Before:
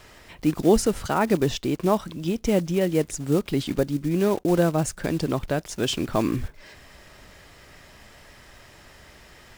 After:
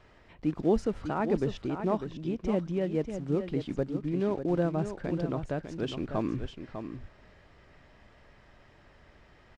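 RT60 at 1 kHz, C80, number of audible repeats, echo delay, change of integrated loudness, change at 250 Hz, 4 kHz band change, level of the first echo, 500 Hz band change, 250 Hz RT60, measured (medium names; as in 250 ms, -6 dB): no reverb, no reverb, 1, 599 ms, -7.5 dB, -6.5 dB, -14.5 dB, -8.5 dB, -7.0 dB, no reverb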